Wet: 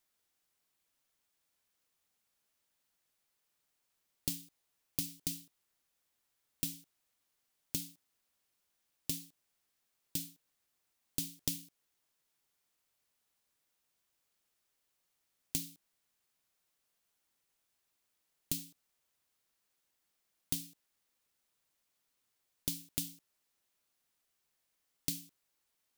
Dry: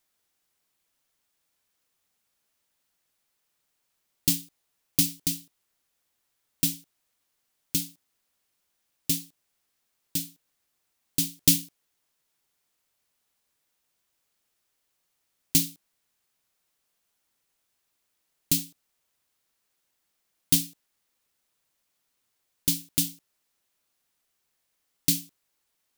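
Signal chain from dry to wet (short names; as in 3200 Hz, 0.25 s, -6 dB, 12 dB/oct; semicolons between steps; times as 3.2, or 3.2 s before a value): compressor 8:1, threshold -28 dBFS, peak gain reduction 15 dB; gain -4.5 dB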